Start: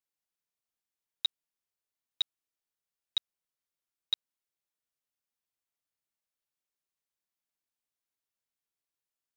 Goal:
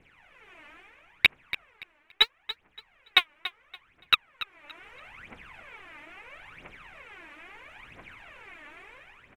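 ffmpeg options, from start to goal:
-af "apsyclip=37.6,adynamicsmooth=sensitivity=5.5:basefreq=4200,aphaser=in_gain=1:out_gain=1:delay=3.5:decay=0.79:speed=0.75:type=triangular,dynaudnorm=f=110:g=9:m=3.16,highshelf=f=3300:t=q:w=3:g=-12,aecho=1:1:285|570|855:0.188|0.0471|0.0118,adynamicequalizer=threshold=0.00251:dfrequency=1200:dqfactor=1.4:tfrequency=1200:tqfactor=1.4:attack=5:release=100:ratio=0.375:range=2:mode=boostabove:tftype=bell,volume=1.5"

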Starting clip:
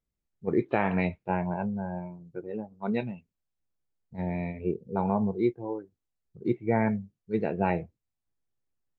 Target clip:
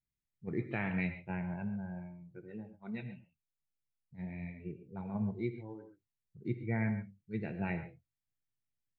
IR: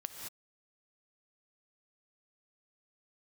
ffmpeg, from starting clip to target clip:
-filter_complex "[0:a]equalizer=f=125:t=o:w=1:g=8,equalizer=f=500:t=o:w=1:g=-6,equalizer=f=1000:t=o:w=1:g=-7,equalizer=f=2000:t=o:w=1:g=7[s0];[1:a]atrim=start_sample=2205,afade=t=out:st=0.19:d=0.01,atrim=end_sample=8820,asetrate=43218,aresample=44100[s1];[s0][s1]afir=irnorm=-1:irlink=0,asplit=3[s2][s3][s4];[s2]afade=t=out:st=2.75:d=0.02[s5];[s3]flanger=delay=0.6:depth=6.5:regen=55:speed=1.8:shape=triangular,afade=t=in:st=2.75:d=0.02,afade=t=out:st=5.14:d=0.02[s6];[s4]afade=t=in:st=5.14:d=0.02[s7];[s5][s6][s7]amix=inputs=3:normalize=0,volume=0.473"

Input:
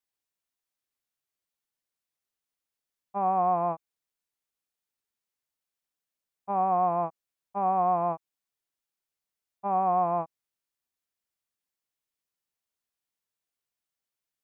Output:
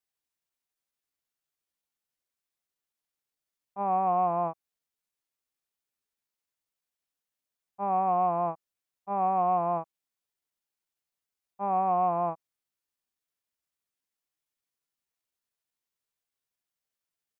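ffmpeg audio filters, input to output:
-af "acontrast=73,atempo=0.83,volume=0.422"

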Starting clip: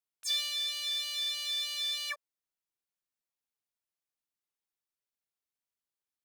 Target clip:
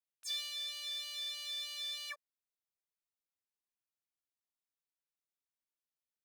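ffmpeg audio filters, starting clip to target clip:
-filter_complex "[0:a]asettb=1/sr,asplit=3[s0][s1][s2];[s0]atrim=end=0.564[s3];[s1]atrim=start=0.56:end=2.06,asetpts=PTS-STARTPTS,afade=t=in:d=0.004:c=qsin,afade=t=out:st=1.496:d=0.004:c=qsin,lowshelf=f=500:g=7[s4];[s2]atrim=start=2.056[s5];[s3][s4]acrossfade=d=0.004:c1=hsin:c2=qsin[s6];[s6][s5]acrossfade=d=0.004:c1=qsin:c2=hsin,volume=0.422"

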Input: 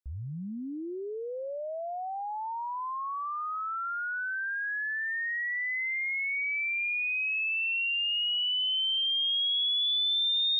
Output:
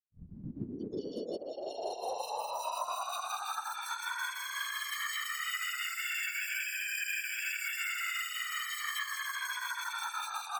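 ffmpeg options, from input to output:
-filter_complex "[0:a]highpass=260,equalizer=f=300:t=q:w=4:g=-3,equalizer=f=560:t=q:w=4:g=-6,equalizer=f=1400:t=q:w=4:g=-5,lowpass=f=2700:w=0.5412,lowpass=f=2700:w=1.3066,aecho=1:1:16|71:0.335|0.266,acrusher=samples=9:mix=1:aa=0.000001,flanger=delay=18.5:depth=3.8:speed=0.39,afftfilt=real='re*gte(hypot(re,im),0.01)':imag='im*gte(hypot(re,im),0.01)':win_size=1024:overlap=0.75,alimiter=level_in=3.35:limit=0.0631:level=0:latency=1:release=32,volume=0.299,asplit=4[s0][s1][s2][s3];[s1]asetrate=29433,aresample=44100,atempo=1.49831,volume=0.562[s4];[s2]asetrate=33038,aresample=44100,atempo=1.33484,volume=0.2[s5];[s3]asetrate=55563,aresample=44100,atempo=0.793701,volume=0.251[s6];[s0][s4][s5][s6]amix=inputs=4:normalize=0,afftfilt=real='hypot(re,im)*cos(2*PI*random(0))':imag='hypot(re,im)*sin(2*PI*random(1))':win_size=512:overlap=0.75,volume=2.37"

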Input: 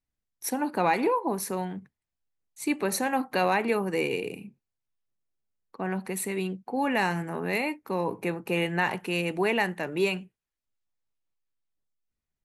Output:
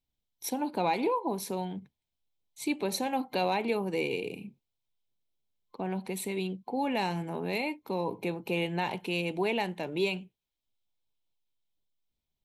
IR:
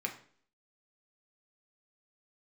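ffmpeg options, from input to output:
-filter_complex "[0:a]superequalizer=10b=0.398:11b=0.355:13b=2:15b=0.708:16b=0.562,asplit=2[s0][s1];[s1]acompressor=threshold=0.0126:ratio=6,volume=1[s2];[s0][s2]amix=inputs=2:normalize=0,volume=0.562"

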